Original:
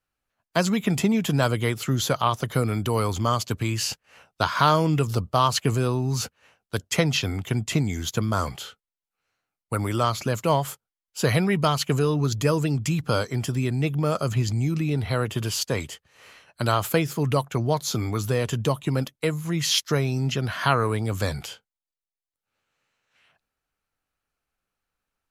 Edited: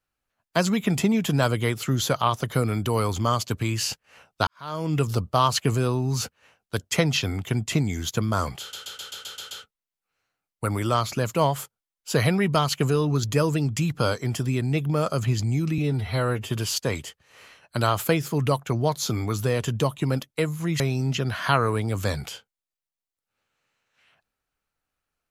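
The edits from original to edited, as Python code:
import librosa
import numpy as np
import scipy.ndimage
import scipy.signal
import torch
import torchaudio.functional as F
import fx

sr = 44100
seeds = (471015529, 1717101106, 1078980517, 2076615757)

y = fx.edit(x, sr, fx.fade_in_span(start_s=4.47, length_s=0.53, curve='qua'),
    fx.stutter(start_s=8.6, slice_s=0.13, count=8),
    fx.stretch_span(start_s=14.87, length_s=0.48, factor=1.5),
    fx.cut(start_s=19.65, length_s=0.32), tone=tone)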